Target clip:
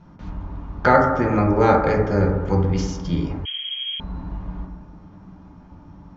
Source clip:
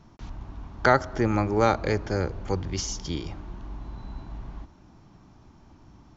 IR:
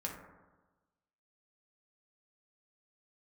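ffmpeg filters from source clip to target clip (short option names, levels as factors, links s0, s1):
-filter_complex "[0:a]aemphasis=mode=reproduction:type=75kf[s0];[1:a]atrim=start_sample=2205[s1];[s0][s1]afir=irnorm=-1:irlink=0,asettb=1/sr,asplit=3[s2][s3][s4];[s2]atrim=end=3.454[s5];[s3]atrim=start=3.45:end=4,asetpts=PTS-STARTPTS,afade=t=in:d=0.004:c=qsin,afade=t=out:st=0.546:d=0.004:c=qsin,lowpass=f=2800:t=q:w=0.5098,lowpass=f=2800:t=q:w=0.6013,lowpass=f=2800:t=q:w=0.9,lowpass=f=2800:t=q:w=2.563,afreqshift=-3300[s6];[s4]atrim=start=3.996[s7];[s5][s6]acrossfade=d=0.004:c1=hsin:c2=qsin[s8];[s8][s7]acrossfade=d=0.004:c1=qsin:c2=hsin,volume=2"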